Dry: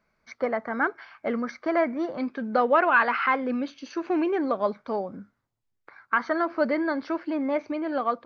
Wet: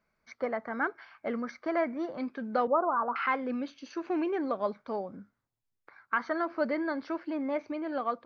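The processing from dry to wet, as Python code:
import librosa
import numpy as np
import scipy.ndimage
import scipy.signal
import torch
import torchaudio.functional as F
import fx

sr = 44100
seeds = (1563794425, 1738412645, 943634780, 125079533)

y = fx.steep_lowpass(x, sr, hz=1300.0, slope=72, at=(2.67, 3.16))
y = F.gain(torch.from_numpy(y), -5.5).numpy()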